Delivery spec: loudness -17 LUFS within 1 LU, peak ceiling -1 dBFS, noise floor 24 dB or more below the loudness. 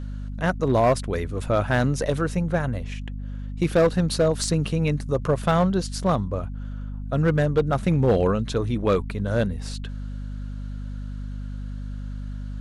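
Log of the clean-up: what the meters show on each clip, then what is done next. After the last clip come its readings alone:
clipped 1.0%; flat tops at -13.0 dBFS; hum 50 Hz; harmonics up to 250 Hz; hum level -29 dBFS; loudness -23.5 LUFS; peak -13.0 dBFS; loudness target -17.0 LUFS
-> clip repair -13 dBFS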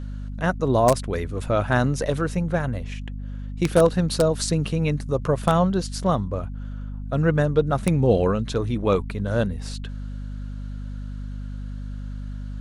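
clipped 0.0%; hum 50 Hz; harmonics up to 250 Hz; hum level -29 dBFS
-> de-hum 50 Hz, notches 5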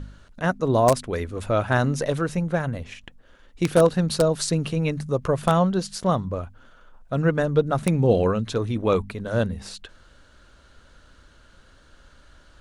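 hum none; loudness -23.0 LUFS; peak -4.0 dBFS; loudness target -17.0 LUFS
-> gain +6 dB; limiter -1 dBFS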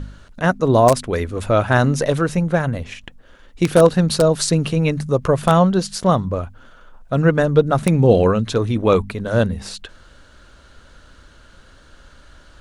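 loudness -17.5 LUFS; peak -1.0 dBFS; noise floor -48 dBFS

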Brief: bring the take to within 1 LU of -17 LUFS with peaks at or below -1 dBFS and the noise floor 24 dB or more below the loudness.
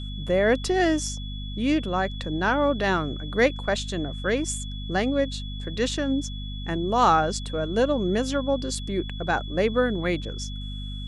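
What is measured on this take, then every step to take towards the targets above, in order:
hum 50 Hz; harmonics up to 250 Hz; hum level -31 dBFS; steady tone 3400 Hz; tone level -40 dBFS; loudness -25.5 LUFS; peak -7.0 dBFS; loudness target -17.0 LUFS
-> de-hum 50 Hz, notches 5; notch 3400 Hz, Q 30; gain +8.5 dB; limiter -1 dBFS

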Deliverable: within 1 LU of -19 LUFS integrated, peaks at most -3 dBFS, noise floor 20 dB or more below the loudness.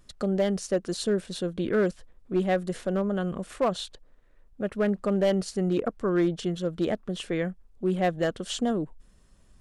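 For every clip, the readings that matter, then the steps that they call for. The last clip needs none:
clipped 0.7%; flat tops at -17.5 dBFS; loudness -28.0 LUFS; peak -17.5 dBFS; loudness target -19.0 LUFS
-> clip repair -17.5 dBFS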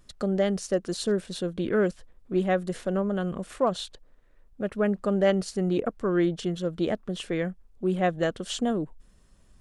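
clipped 0.0%; loudness -28.0 LUFS; peak -9.5 dBFS; loudness target -19.0 LUFS
-> gain +9 dB; limiter -3 dBFS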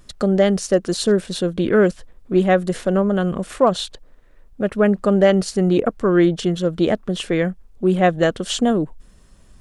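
loudness -19.0 LUFS; peak -3.0 dBFS; noise floor -49 dBFS

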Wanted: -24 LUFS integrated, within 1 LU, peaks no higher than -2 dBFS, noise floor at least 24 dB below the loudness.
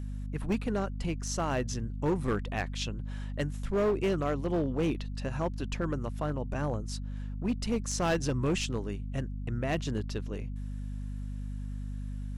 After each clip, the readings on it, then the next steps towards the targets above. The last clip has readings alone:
clipped 1.7%; flat tops at -23.0 dBFS; hum 50 Hz; harmonics up to 250 Hz; hum level -34 dBFS; loudness -33.0 LUFS; peak -23.0 dBFS; loudness target -24.0 LUFS
-> clip repair -23 dBFS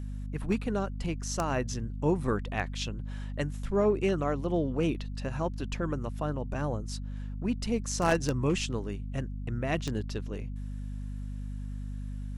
clipped 0.0%; hum 50 Hz; harmonics up to 250 Hz; hum level -34 dBFS
-> de-hum 50 Hz, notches 5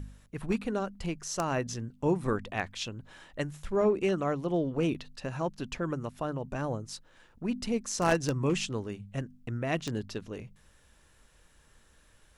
hum none; loudness -32.5 LUFS; peak -13.5 dBFS; loudness target -24.0 LUFS
-> gain +8.5 dB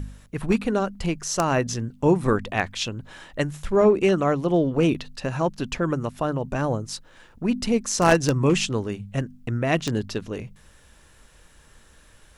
loudness -24.0 LUFS; peak -5.0 dBFS; noise floor -54 dBFS

